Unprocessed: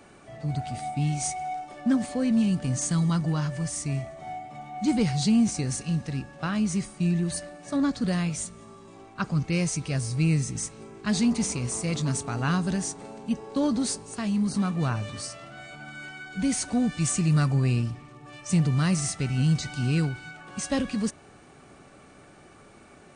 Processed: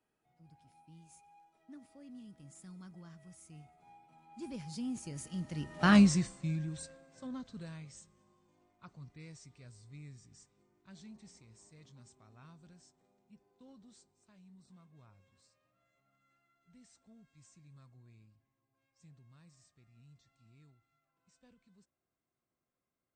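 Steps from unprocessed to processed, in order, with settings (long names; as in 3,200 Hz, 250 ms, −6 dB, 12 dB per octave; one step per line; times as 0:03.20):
source passing by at 0:05.94, 32 m/s, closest 2.4 metres
level +6.5 dB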